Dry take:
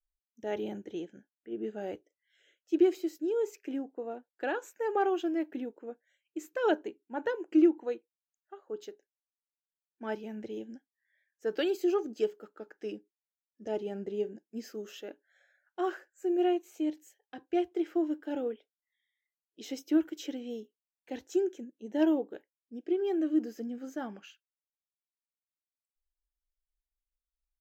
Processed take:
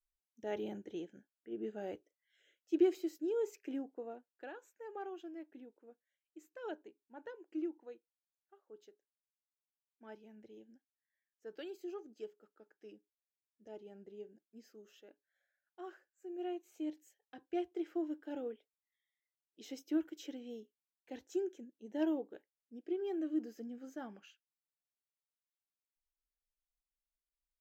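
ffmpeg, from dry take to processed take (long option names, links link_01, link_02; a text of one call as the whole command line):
ffmpeg -i in.wav -af "volume=3.5dB,afade=type=out:start_time=3.88:duration=0.63:silence=0.266073,afade=type=in:start_time=16.31:duration=0.6:silence=0.375837" out.wav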